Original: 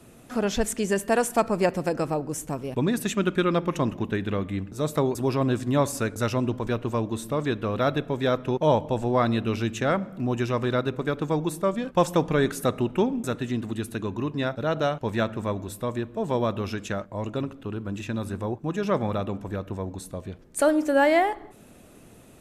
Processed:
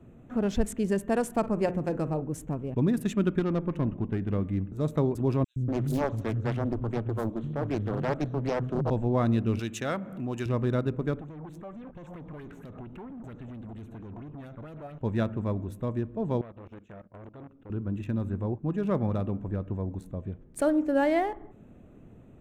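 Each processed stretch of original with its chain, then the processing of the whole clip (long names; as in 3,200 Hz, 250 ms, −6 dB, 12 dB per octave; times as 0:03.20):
0:01.38–0:02.24: mains-hum notches 60/120/180/240/300/360/420/480 Hz + flutter between parallel walls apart 8.6 metres, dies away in 0.2 s
0:03.39–0:04.33: high-shelf EQ 5,700 Hz −9.5 dB + tube saturation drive 18 dB, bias 0.4
0:05.44–0:08.90: three-band delay without the direct sound highs, lows, mids 120/240 ms, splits 180/5,100 Hz + highs frequency-modulated by the lows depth 0.76 ms
0:09.59–0:10.46: spectral tilt +3 dB per octave + upward compression, threshold −29 dBFS
0:11.21–0:15.01: downward compressor 3 to 1, threshold −31 dBFS + tube saturation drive 39 dB, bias 0.45 + auto-filter bell 4.4 Hz 680–6,500 Hz +12 dB
0:16.41–0:17.70: low-shelf EQ 200 Hz −5.5 dB + output level in coarse steps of 18 dB + saturating transformer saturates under 1,500 Hz
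whole clip: adaptive Wiener filter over 9 samples; low-shelf EQ 390 Hz +12 dB; level −9 dB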